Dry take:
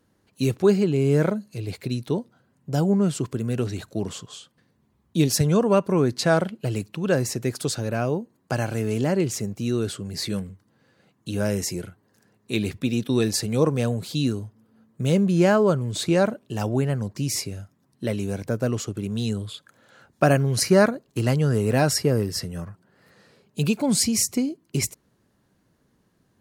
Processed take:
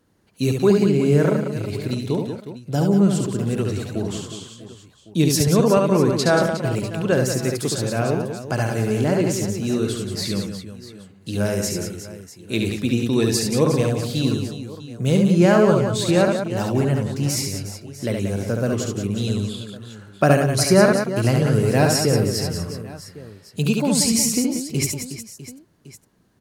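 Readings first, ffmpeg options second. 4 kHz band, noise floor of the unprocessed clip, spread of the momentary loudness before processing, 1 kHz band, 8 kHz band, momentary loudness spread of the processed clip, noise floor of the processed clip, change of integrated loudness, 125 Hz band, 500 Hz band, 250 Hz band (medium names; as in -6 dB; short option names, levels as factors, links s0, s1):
+3.5 dB, -67 dBFS, 12 LU, +3.5 dB, +3.5 dB, 17 LU, -50 dBFS, +3.5 dB, +3.5 dB, +3.5 dB, +3.5 dB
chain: -af "aecho=1:1:70|182|361.2|647.9|1107:0.631|0.398|0.251|0.158|0.1,volume=1.19"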